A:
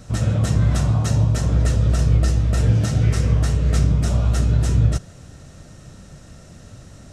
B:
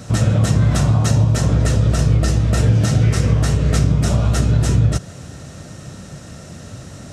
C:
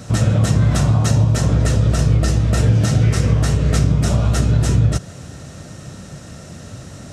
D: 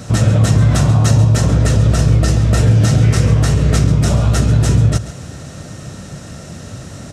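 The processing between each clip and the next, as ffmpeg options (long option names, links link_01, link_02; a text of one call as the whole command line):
ffmpeg -i in.wav -af "highpass=81,acompressor=threshold=-22dB:ratio=2,volume=8.5dB" out.wav
ffmpeg -i in.wav -af anull out.wav
ffmpeg -i in.wav -filter_complex "[0:a]asplit=2[link_01][link_02];[link_02]asoftclip=type=tanh:threshold=-13dB,volume=-8dB[link_03];[link_01][link_03]amix=inputs=2:normalize=0,aecho=1:1:136:0.188,volume=1dB" out.wav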